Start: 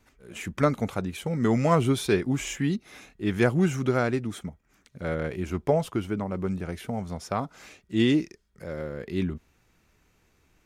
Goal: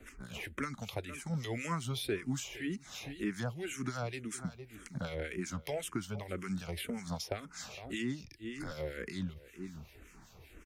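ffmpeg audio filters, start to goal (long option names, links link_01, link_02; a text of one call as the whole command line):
ffmpeg -i in.wav -filter_complex "[0:a]asettb=1/sr,asplit=3[link_01][link_02][link_03];[link_01]atrim=end=8.234[link_04];[link_02]atrim=start=8.23:end=8.71,asetpts=PTS-STARTPTS,afade=type=in:duration=0.004:curve=qsin,afade=type=out:start_time=0.476:duration=0.004:curve=qsin,afreqshift=-75[link_05];[link_03]atrim=start=8.706[link_06];[link_04][link_05]acrossfade=duration=0.004:curve1=hsin:curve2=qsin[link_07];[link_07][link_06]acrossfade=duration=0.004:curve1=qsin:curve2=hsin,aecho=1:1:458:0.0841,acrossover=split=120|1700[link_08][link_09][link_10];[link_08]acompressor=threshold=-58dB:ratio=4[link_11];[link_09]acompressor=threshold=-51dB:ratio=4[link_12];[link_10]acompressor=threshold=-52dB:ratio=4[link_13];[link_11][link_12][link_13]amix=inputs=3:normalize=0,acrossover=split=1600[link_14][link_15];[link_14]aeval=exprs='val(0)*(1-0.7/2+0.7/2*cos(2*PI*5.2*n/s))':channel_layout=same[link_16];[link_15]aeval=exprs='val(0)*(1-0.7/2-0.7/2*cos(2*PI*5.2*n/s))':channel_layout=same[link_17];[link_16][link_17]amix=inputs=2:normalize=0,asplit=2[link_18][link_19];[link_19]afreqshift=-1.9[link_20];[link_18][link_20]amix=inputs=2:normalize=1,volume=14dB" out.wav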